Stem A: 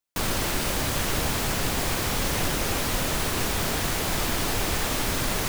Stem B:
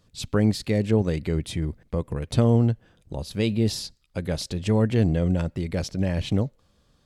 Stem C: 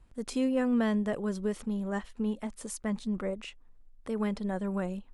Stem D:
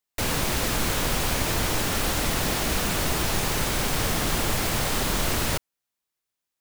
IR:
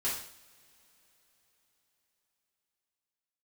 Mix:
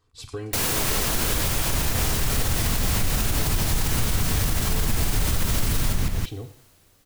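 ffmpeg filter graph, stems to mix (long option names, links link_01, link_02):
-filter_complex "[0:a]asubboost=boost=7.5:cutoff=180,adelay=600,volume=0dB,asplit=2[link_01][link_02];[link_02]volume=-8dB[link_03];[1:a]aecho=1:1:2.6:0.98,acompressor=threshold=-22dB:ratio=6,volume=-11dB,asplit=2[link_04][link_05];[link_05]volume=-10dB[link_06];[2:a]highpass=frequency=1100:width_type=q:width=4.3,volume=-10.5dB,asplit=2[link_07][link_08];[link_08]volume=-13dB[link_09];[3:a]highshelf=frequency=5100:gain=8.5,adelay=350,volume=-2dB,asplit=2[link_10][link_11];[link_11]volume=-10.5dB[link_12];[4:a]atrim=start_sample=2205[link_13];[link_06][link_12]amix=inputs=2:normalize=0[link_14];[link_14][link_13]afir=irnorm=-1:irlink=0[link_15];[link_03][link_09]amix=inputs=2:normalize=0,aecho=0:1:174:1[link_16];[link_01][link_04][link_07][link_10][link_15][link_16]amix=inputs=6:normalize=0,alimiter=limit=-13dB:level=0:latency=1:release=122"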